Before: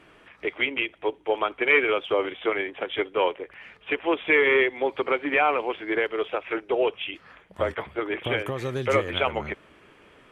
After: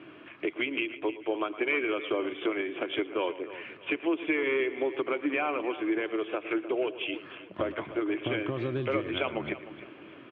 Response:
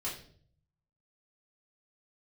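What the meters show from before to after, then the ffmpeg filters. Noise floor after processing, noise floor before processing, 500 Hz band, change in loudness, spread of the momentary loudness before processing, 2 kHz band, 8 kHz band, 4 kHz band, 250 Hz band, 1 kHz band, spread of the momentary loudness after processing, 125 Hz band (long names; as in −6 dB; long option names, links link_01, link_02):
−50 dBFS, −55 dBFS, −6.0 dB, −6.0 dB, 13 LU, −8.0 dB, can't be measured, −6.0 dB, +1.5 dB, −8.5 dB, 10 LU, −4.0 dB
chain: -filter_complex "[0:a]highpass=frequency=110:width=0.5412,highpass=frequency=110:width=1.3066,equalizer=frequency=180:width_type=q:width=4:gain=-6,equalizer=frequency=320:width_type=q:width=4:gain=8,equalizer=frequency=470:width_type=q:width=4:gain=-7,equalizer=frequency=840:width_type=q:width=4:gain=-9,equalizer=frequency=1300:width_type=q:width=4:gain=-4,equalizer=frequency=1900:width_type=q:width=4:gain=-8,lowpass=frequency=3000:width=0.5412,lowpass=frequency=3000:width=1.3066,asplit=2[link_01][link_02];[link_02]aecho=0:1:110:0.126[link_03];[link_01][link_03]amix=inputs=2:normalize=0,acompressor=threshold=-37dB:ratio=2.5,asplit=2[link_04][link_05];[link_05]aecho=0:1:306|612|918:0.188|0.0603|0.0193[link_06];[link_04][link_06]amix=inputs=2:normalize=0,volume=6dB"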